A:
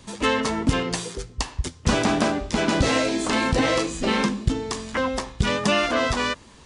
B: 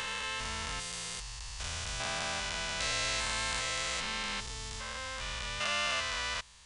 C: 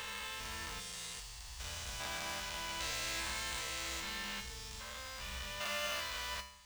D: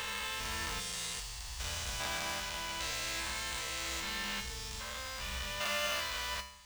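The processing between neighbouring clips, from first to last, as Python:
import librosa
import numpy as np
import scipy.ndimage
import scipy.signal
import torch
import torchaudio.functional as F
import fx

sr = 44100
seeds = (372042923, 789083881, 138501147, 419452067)

y1 = fx.spec_steps(x, sr, hold_ms=400)
y1 = fx.tone_stack(y1, sr, knobs='10-0-10')
y2 = fx.mod_noise(y1, sr, seeds[0], snr_db=13)
y2 = fx.comb_fb(y2, sr, f0_hz=66.0, decay_s=0.64, harmonics='odd', damping=0.0, mix_pct=80)
y2 = F.gain(torch.from_numpy(y2), 4.5).numpy()
y3 = fx.rider(y2, sr, range_db=10, speed_s=2.0)
y3 = F.gain(torch.from_numpy(y3), 3.0).numpy()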